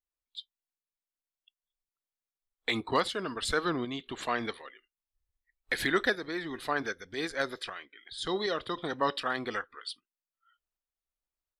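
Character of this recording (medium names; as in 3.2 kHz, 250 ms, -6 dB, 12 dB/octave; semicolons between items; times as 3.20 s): tremolo saw up 1.3 Hz, depth 45%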